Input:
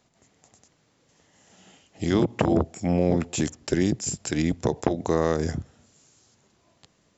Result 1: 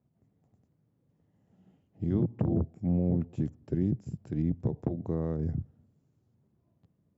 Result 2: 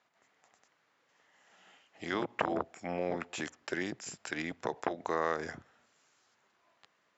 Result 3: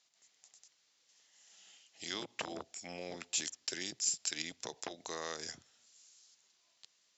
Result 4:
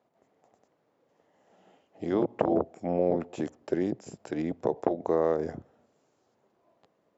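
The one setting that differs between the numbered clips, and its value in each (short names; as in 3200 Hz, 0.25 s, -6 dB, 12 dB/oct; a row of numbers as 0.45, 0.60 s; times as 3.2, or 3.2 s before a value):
band-pass, frequency: 120, 1500, 4800, 580 Hz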